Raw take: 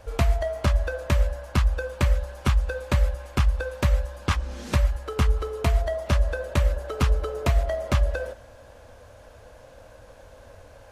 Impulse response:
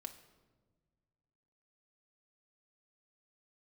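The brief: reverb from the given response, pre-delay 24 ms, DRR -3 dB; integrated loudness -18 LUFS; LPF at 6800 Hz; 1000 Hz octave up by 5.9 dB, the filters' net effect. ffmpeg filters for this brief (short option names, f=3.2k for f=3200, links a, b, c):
-filter_complex "[0:a]lowpass=6.8k,equalizer=f=1k:t=o:g=7.5,asplit=2[a][b];[1:a]atrim=start_sample=2205,adelay=24[c];[b][c]afir=irnorm=-1:irlink=0,volume=7dB[d];[a][d]amix=inputs=2:normalize=0,volume=2dB"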